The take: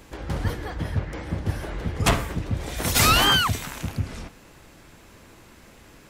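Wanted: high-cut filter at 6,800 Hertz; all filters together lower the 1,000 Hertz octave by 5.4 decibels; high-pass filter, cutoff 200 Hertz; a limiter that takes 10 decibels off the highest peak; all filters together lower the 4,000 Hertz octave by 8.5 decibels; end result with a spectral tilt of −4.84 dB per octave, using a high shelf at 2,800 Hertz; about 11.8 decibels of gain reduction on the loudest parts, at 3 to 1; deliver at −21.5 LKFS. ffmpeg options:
ffmpeg -i in.wav -af "highpass=200,lowpass=6800,equalizer=frequency=1000:width_type=o:gain=-6,highshelf=frequency=2800:gain=-5,equalizer=frequency=4000:width_type=o:gain=-7.5,acompressor=threshold=-37dB:ratio=3,volume=21.5dB,alimiter=limit=-12dB:level=0:latency=1" out.wav

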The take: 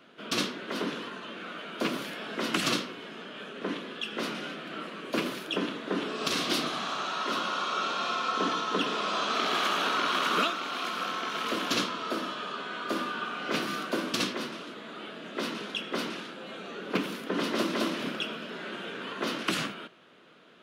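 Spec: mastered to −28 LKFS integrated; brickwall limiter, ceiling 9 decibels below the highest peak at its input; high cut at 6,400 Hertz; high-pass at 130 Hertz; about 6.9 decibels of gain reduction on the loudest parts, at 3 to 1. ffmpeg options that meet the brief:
ffmpeg -i in.wav -af "highpass=130,lowpass=6400,acompressor=threshold=-33dB:ratio=3,volume=9.5dB,alimiter=limit=-18dB:level=0:latency=1" out.wav

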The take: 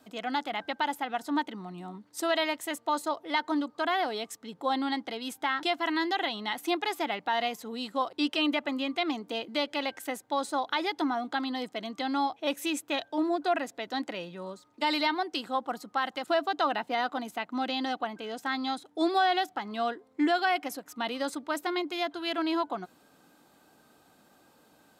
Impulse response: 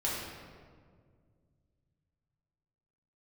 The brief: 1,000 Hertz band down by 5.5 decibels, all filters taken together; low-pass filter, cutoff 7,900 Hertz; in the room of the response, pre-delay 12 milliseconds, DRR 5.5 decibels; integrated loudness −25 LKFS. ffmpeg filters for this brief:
-filter_complex "[0:a]lowpass=7900,equalizer=frequency=1000:width_type=o:gain=-8,asplit=2[link_01][link_02];[1:a]atrim=start_sample=2205,adelay=12[link_03];[link_02][link_03]afir=irnorm=-1:irlink=0,volume=-12dB[link_04];[link_01][link_04]amix=inputs=2:normalize=0,volume=7dB"

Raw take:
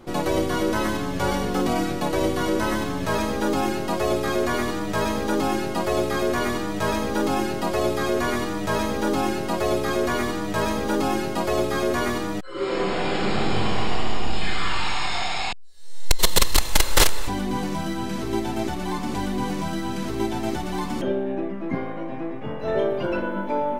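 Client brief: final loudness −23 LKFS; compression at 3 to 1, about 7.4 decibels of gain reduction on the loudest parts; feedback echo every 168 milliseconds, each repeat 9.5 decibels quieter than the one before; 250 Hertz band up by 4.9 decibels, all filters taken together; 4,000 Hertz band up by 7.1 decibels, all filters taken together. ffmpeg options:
ffmpeg -i in.wav -af "equalizer=frequency=250:width_type=o:gain=6.5,equalizer=frequency=4000:width_type=o:gain=8.5,acompressor=threshold=-19dB:ratio=3,aecho=1:1:168|336|504|672:0.335|0.111|0.0365|0.012,volume=0.5dB" out.wav

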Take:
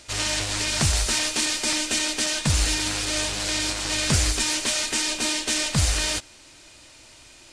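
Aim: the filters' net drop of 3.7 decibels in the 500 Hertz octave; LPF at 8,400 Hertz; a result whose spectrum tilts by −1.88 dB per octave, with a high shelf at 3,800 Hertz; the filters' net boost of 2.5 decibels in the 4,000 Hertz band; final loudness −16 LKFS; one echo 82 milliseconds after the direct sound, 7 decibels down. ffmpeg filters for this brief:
ffmpeg -i in.wav -af "lowpass=8400,equalizer=frequency=500:width_type=o:gain=-5,highshelf=frequency=3800:gain=-4,equalizer=frequency=4000:width_type=o:gain=6,aecho=1:1:82:0.447,volume=5.5dB" out.wav

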